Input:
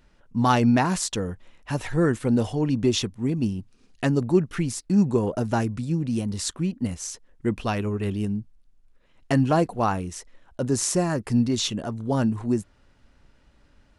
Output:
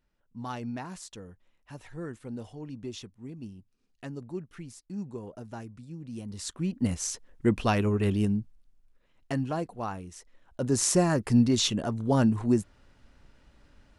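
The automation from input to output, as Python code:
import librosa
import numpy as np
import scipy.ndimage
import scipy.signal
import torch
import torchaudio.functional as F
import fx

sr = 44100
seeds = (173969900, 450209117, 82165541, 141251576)

y = fx.gain(x, sr, db=fx.line((5.93, -17.0), (6.53, -7.0), (6.9, 1.0), (8.24, 1.0), (9.56, -11.0), (10.09, -11.0), (10.89, 0.0)))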